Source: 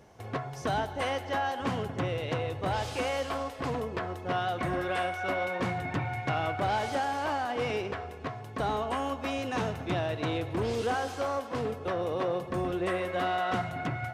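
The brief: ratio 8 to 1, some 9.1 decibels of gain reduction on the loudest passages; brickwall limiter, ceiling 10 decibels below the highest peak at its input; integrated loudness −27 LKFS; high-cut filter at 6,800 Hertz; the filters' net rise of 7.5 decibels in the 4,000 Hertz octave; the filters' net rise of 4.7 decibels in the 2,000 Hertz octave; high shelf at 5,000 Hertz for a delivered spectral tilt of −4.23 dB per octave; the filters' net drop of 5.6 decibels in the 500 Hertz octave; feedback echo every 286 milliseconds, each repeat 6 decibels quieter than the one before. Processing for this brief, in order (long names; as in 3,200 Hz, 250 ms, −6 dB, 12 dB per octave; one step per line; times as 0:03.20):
low-pass filter 6,800 Hz
parametric band 500 Hz −7.5 dB
parametric band 2,000 Hz +4 dB
parametric band 4,000 Hz +5.5 dB
high-shelf EQ 5,000 Hz +8.5 dB
downward compressor 8 to 1, threshold −35 dBFS
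brickwall limiter −31.5 dBFS
repeating echo 286 ms, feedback 50%, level −6 dB
level +12.5 dB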